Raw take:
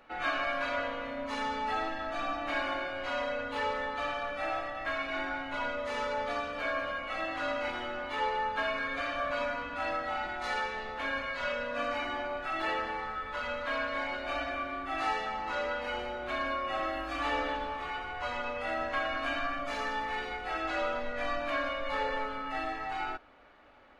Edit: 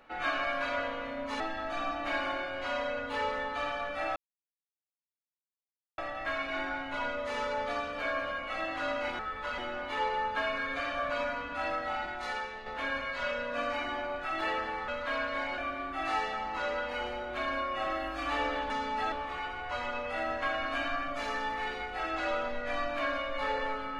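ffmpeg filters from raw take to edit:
-filter_complex "[0:a]asplit=10[s0][s1][s2][s3][s4][s5][s6][s7][s8][s9];[s0]atrim=end=1.402[s10];[s1]atrim=start=1.818:end=4.58,asetpts=PTS-STARTPTS,afade=t=out:st=2.758:d=0.004:c=hsin,apad=pad_dur=1.82[s11];[s2]atrim=start=4.58:end=7.792,asetpts=PTS-STARTPTS,afade=t=in:d=0.004:c=hsin[s12];[s3]atrim=start=13.088:end=13.482[s13];[s4]atrim=start=7.788:end=10.87,asetpts=PTS-STARTPTS,afade=t=out:st=2.382:d=0.7:silence=0.473151[s14];[s5]atrim=start=10.87:end=13.092,asetpts=PTS-STARTPTS,afade=t=in:d=0.004:c=hsin:silence=0.473151[s15];[s6]atrim=start=13.478:end=14.182[s16];[s7]atrim=start=14.508:end=17.632[s17];[s8]atrim=start=1.398:end=1.822[s18];[s9]atrim=start=17.628[s19];[s11][s12]concat=n=2:v=0:a=1[s20];[s10][s20]acrossfade=d=0.004:c1=hsin:c2=hsin[s21];[s21][s13]acrossfade=d=0.004:c1=hsin:c2=hsin[s22];[s14][s15]concat=n=2:v=0:a=1[s23];[s22][s23]acrossfade=d=0.004:c1=hsin:c2=hsin[s24];[s24][s16]acrossfade=d=0.004:c1=hsin:c2=hsin[s25];[s25][s17]acrossfade=d=0.004:c1=hsin:c2=hsin[s26];[s26][s18]acrossfade=d=0.004:c1=hsin:c2=hsin[s27];[s27][s19]acrossfade=d=0.004:c1=hsin:c2=hsin"

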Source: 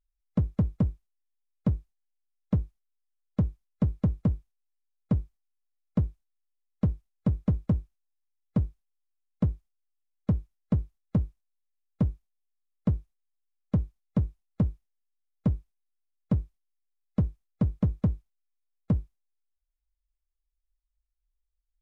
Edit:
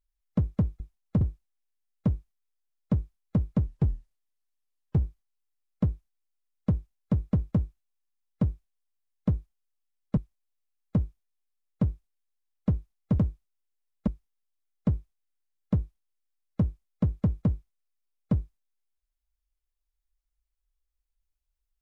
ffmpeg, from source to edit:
-filter_complex "[0:a]asplit=8[s0][s1][s2][s3][s4][s5][s6][s7];[s0]atrim=end=0.802[s8];[s1]atrim=start=14.248:end=14.662[s9];[s2]atrim=start=1.678:end=4.144[s10];[s3]atrim=start=4.14:end=5.16,asetpts=PTS-STARTPTS,asetrate=33516,aresample=44100[s11];[s4]atrim=start=5.156:end=10.322[s12];[s5]atrim=start=11.228:end=14.252[s13];[s6]atrim=start=0.798:end=1.682[s14];[s7]atrim=start=14.658[s15];[s8][s9]acrossfade=d=0.004:c1=hsin:c2=hsin[s16];[s16][s10]acrossfade=d=0.004:c1=hsin:c2=hsin[s17];[s17][s11]acrossfade=d=0.004:c1=hsin:c2=hsin[s18];[s18][s12]acrossfade=d=0.004:c1=hsin:c2=hsin[s19];[s19][s13]acrossfade=d=0.004:c1=hsin:c2=hsin[s20];[s20][s14]acrossfade=d=0.004:c1=hsin:c2=hsin[s21];[s21][s15]acrossfade=d=0.004:c1=hsin:c2=hsin"

